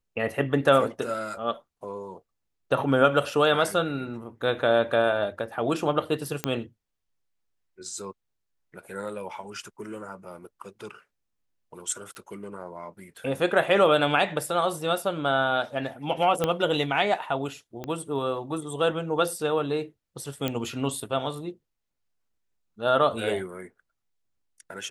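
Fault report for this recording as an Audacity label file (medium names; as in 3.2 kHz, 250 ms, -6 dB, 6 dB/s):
6.440000	6.440000	pop -9 dBFS
12.150000	12.150000	pop -30 dBFS
16.440000	16.440000	pop -10 dBFS
17.840000	17.840000	pop -20 dBFS
20.480000	20.480000	pop -13 dBFS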